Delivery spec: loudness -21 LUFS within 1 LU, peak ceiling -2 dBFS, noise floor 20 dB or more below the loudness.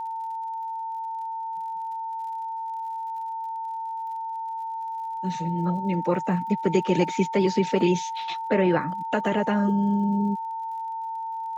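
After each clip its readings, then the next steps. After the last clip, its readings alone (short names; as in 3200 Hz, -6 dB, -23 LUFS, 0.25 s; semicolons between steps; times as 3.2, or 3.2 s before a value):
ticks 57/s; steady tone 900 Hz; tone level -29 dBFS; loudness -27.0 LUFS; peak -8.5 dBFS; loudness target -21.0 LUFS
-> de-click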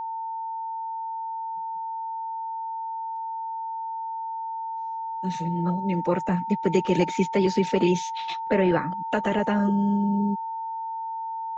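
ticks 0.086/s; steady tone 900 Hz; tone level -29 dBFS
-> notch 900 Hz, Q 30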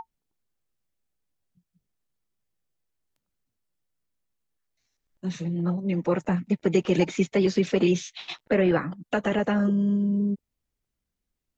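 steady tone none; loudness -25.0 LUFS; peak -9.5 dBFS; loudness target -21.0 LUFS
-> gain +4 dB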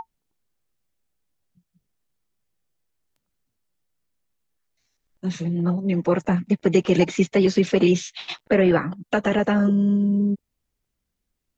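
loudness -21.0 LUFS; peak -5.5 dBFS; noise floor -79 dBFS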